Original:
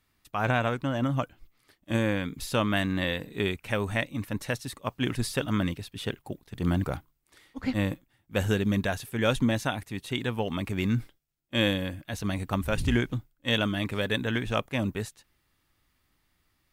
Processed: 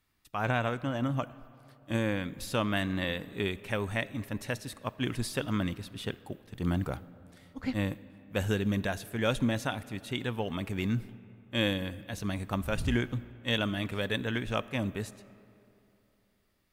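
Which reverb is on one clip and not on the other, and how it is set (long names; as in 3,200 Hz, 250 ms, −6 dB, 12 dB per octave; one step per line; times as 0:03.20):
comb and all-pass reverb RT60 3 s, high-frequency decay 0.55×, pre-delay 5 ms, DRR 17.5 dB
level −3.5 dB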